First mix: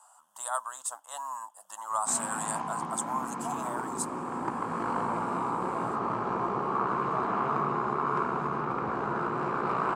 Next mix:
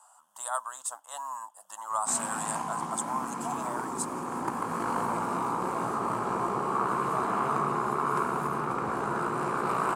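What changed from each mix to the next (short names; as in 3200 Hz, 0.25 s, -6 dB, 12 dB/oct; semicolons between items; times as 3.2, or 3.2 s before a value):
background: remove air absorption 150 m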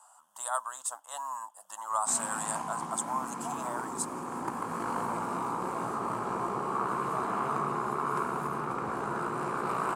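background -3.0 dB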